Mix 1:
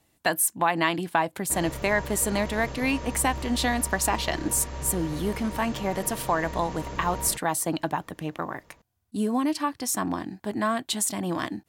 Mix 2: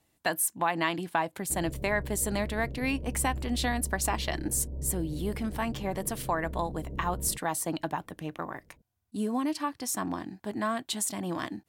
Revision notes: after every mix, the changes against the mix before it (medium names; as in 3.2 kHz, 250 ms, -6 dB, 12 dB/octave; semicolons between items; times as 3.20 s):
speech -4.5 dB; background: add Gaussian low-pass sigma 19 samples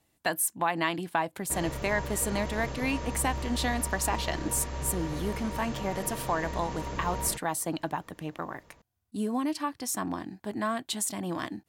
background: remove Gaussian low-pass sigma 19 samples